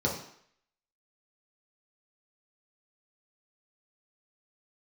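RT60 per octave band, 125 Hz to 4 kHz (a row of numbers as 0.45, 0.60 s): 0.50, 0.55, 0.60, 0.65, 0.70, 0.65 s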